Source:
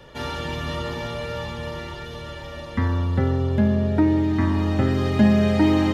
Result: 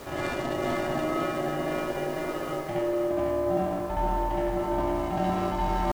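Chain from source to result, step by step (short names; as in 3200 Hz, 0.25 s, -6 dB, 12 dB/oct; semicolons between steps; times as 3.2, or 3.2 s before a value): Wiener smoothing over 15 samples; in parallel at -8.5 dB: wavefolder -21.5 dBFS; on the sum: pitch shift +5.5 st; low shelf 320 Hz +5.5 dB; reverse echo 68 ms -4 dB; added noise pink -44 dBFS; ring modulator 470 Hz; reverse; compressor, threshold -25 dBFS, peak gain reduction 13.5 dB; reverse; lo-fi delay 0.502 s, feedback 35%, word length 8-bit, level -5 dB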